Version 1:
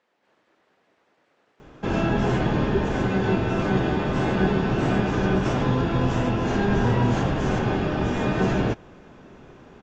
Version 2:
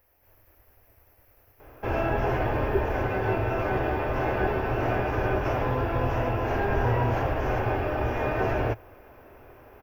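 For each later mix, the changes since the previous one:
speech: remove band-pass 390–2700 Hz; master: add FFT filter 110 Hz 0 dB, 170 Hz -20 dB, 270 Hz -8 dB, 620 Hz +2 dB, 1.2 kHz -2 dB, 2.5 kHz -1 dB, 3.7 kHz -15 dB, 5.6 kHz -8 dB, 8.4 kHz -27 dB, 12 kHz +13 dB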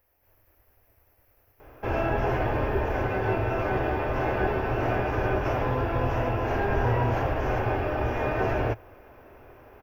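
speech -4.0 dB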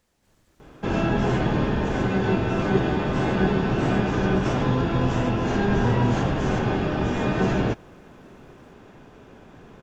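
background: entry -1.00 s; master: remove FFT filter 110 Hz 0 dB, 170 Hz -20 dB, 270 Hz -8 dB, 620 Hz +2 dB, 1.2 kHz -2 dB, 2.5 kHz -1 dB, 3.7 kHz -15 dB, 5.6 kHz -8 dB, 8.4 kHz -27 dB, 12 kHz +13 dB

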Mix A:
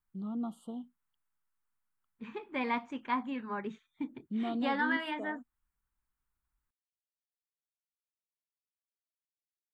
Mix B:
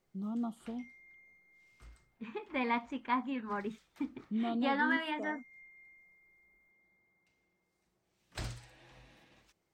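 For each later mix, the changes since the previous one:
background: unmuted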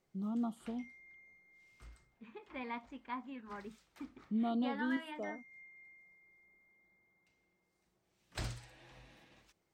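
second voice -10.0 dB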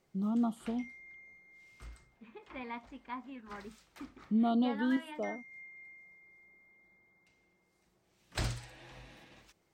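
first voice +5.5 dB; background +6.0 dB

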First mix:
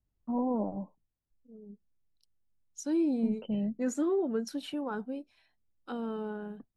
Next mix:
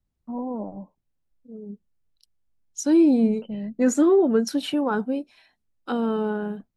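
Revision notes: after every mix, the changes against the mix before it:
second voice +11.5 dB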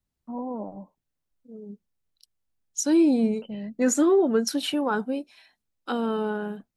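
master: add tilt EQ +1.5 dB/octave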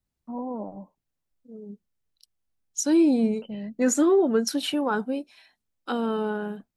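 no change

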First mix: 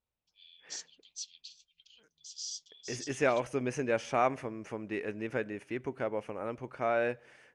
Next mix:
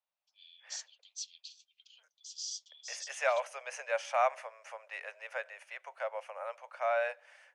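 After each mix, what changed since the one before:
master: add steep high-pass 550 Hz 72 dB/octave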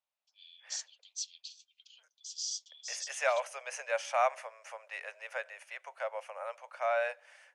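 master: add treble shelf 5.7 kHz +6.5 dB

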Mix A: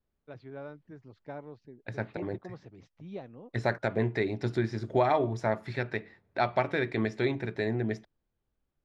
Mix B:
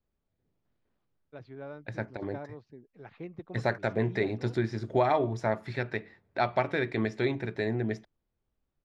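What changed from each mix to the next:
first voice: entry +1.05 s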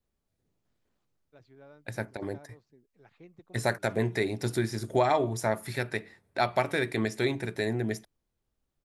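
first voice -11.0 dB; master: remove distance through air 190 m

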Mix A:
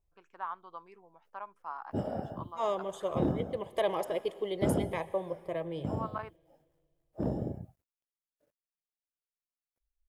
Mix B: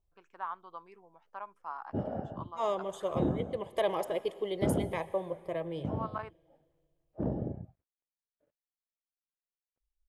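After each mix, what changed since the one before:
background: add distance through air 370 m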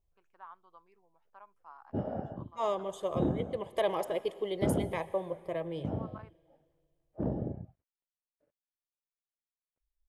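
first voice -11.5 dB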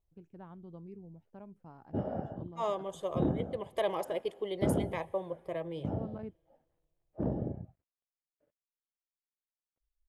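first voice: remove resonant high-pass 1.1 kHz, resonance Q 3.6; second voice: send -9.0 dB

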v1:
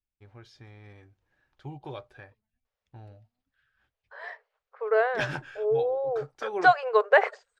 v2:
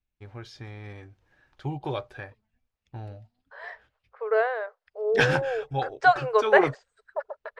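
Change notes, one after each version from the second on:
first voice +8.5 dB; second voice: entry -0.60 s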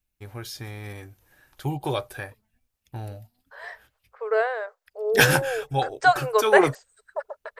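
first voice +3.5 dB; master: remove distance through air 150 m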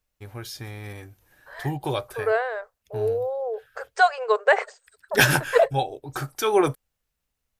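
second voice: entry -2.05 s

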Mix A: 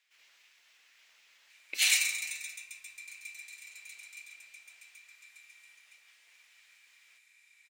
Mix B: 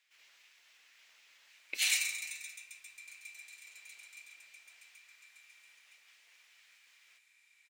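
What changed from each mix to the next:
background -4.5 dB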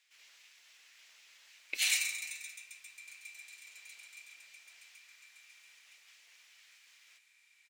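speech: add peaking EQ 7.5 kHz +5.5 dB 2.3 oct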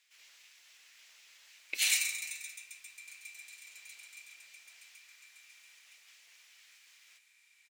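master: add treble shelf 7 kHz +4.5 dB

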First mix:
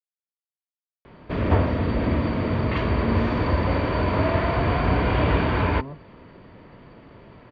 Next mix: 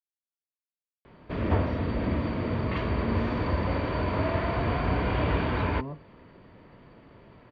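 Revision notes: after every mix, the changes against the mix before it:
background -5.5 dB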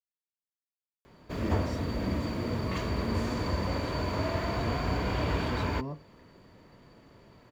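background -3.5 dB; master: remove low-pass 3.4 kHz 24 dB/octave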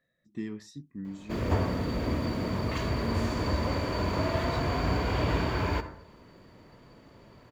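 speech: entry -1.05 s; reverb: on, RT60 0.70 s

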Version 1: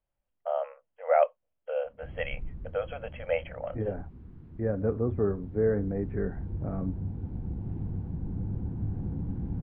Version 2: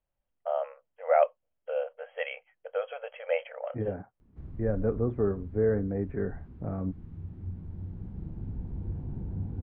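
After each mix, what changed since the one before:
background: entry +2.35 s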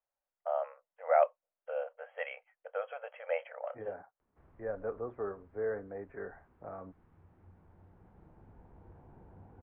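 master: add three-band isolator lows -22 dB, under 530 Hz, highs -16 dB, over 2.2 kHz

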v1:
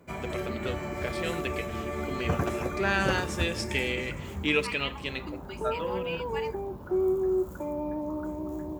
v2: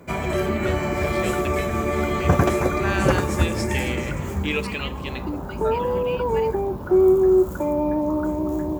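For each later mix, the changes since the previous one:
background +10.5 dB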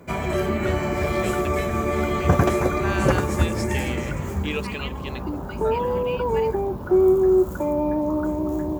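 reverb: off

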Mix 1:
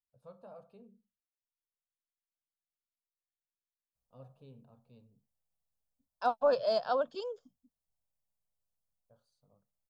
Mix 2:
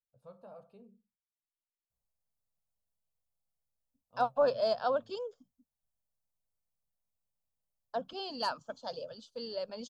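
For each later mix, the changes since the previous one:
second voice: entry -2.05 s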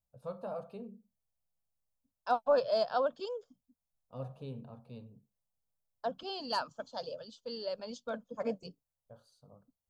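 first voice +11.5 dB; second voice: entry -1.90 s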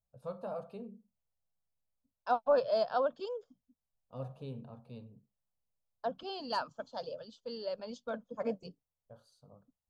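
second voice: add treble shelf 5 kHz -8.5 dB

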